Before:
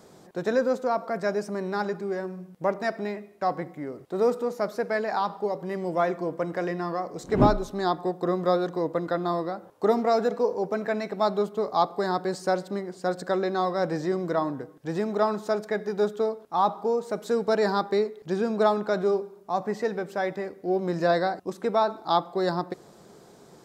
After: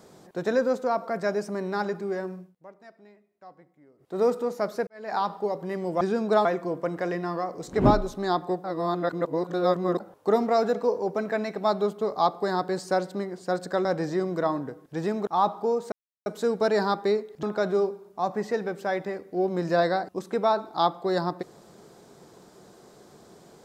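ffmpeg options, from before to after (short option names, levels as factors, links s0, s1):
-filter_complex "[0:a]asplit=12[s0][s1][s2][s3][s4][s5][s6][s7][s8][s9][s10][s11];[s0]atrim=end=2.55,asetpts=PTS-STARTPTS,afade=t=out:st=2.33:d=0.22:silence=0.0794328[s12];[s1]atrim=start=2.55:end=3.98,asetpts=PTS-STARTPTS,volume=0.0794[s13];[s2]atrim=start=3.98:end=4.87,asetpts=PTS-STARTPTS,afade=t=in:d=0.22:silence=0.0794328,afade=t=out:st=0.886:d=0.004:c=hsin[s14];[s3]atrim=start=4.87:end=6.012,asetpts=PTS-STARTPTS,afade=t=in:d=0.28:c=qua[s15];[s4]atrim=start=18.298:end=18.742[s16];[s5]atrim=start=6.008:end=8.202[s17];[s6]atrim=start=8.198:end=9.562,asetpts=PTS-STARTPTS,areverse[s18];[s7]atrim=start=9.558:end=13.412[s19];[s8]atrim=start=13.768:end=15.192[s20];[s9]atrim=start=16.478:end=17.13,asetpts=PTS-STARTPTS,afade=t=out:st=0.648:d=0.004:c=hsin,apad=pad_dur=0.34[s21];[s10]atrim=start=17.13:end=18.302,asetpts=PTS-STARTPTS,afade=t=in:d=0.004:c=hsin[s22];[s11]atrim=start=18.738[s23];[s12][s13][s14][s15]concat=n=4:v=0:a=1[s24];[s24][s16]acrossfade=d=0.004:c1=hsin:c2=hsin[s25];[s25][s17]acrossfade=d=0.004:c1=hsin:c2=hsin[s26];[s26][s18]acrossfade=d=0.004:c1=hsin:c2=hsin[s27];[s27][s19]acrossfade=d=0.004:c1=hsin:c2=hsin[s28];[s28][s20]acrossfade=d=0.004:c1=hsin:c2=hsin[s29];[s21][s22]concat=n=2:v=0:a=1[s30];[s29][s30]acrossfade=d=0.004:c1=hsin:c2=hsin[s31];[s31][s23]acrossfade=d=0.004:c1=hsin:c2=hsin"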